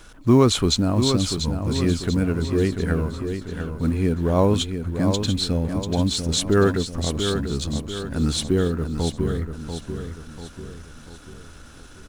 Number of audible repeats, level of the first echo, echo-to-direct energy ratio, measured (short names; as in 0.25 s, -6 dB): 5, -7.5 dB, -6.5 dB